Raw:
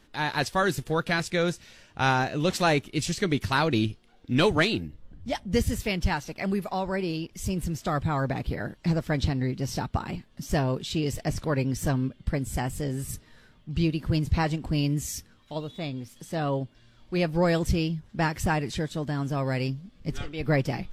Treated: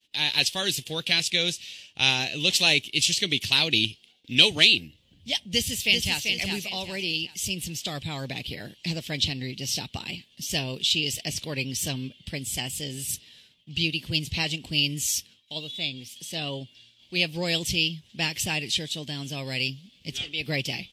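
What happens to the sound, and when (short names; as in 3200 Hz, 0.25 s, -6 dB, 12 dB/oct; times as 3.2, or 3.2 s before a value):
5.5–6.26 echo throw 0.39 s, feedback 35%, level -5 dB
whole clip: expander -50 dBFS; HPF 88 Hz 12 dB/oct; resonant high shelf 2000 Hz +13.5 dB, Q 3; gain -6 dB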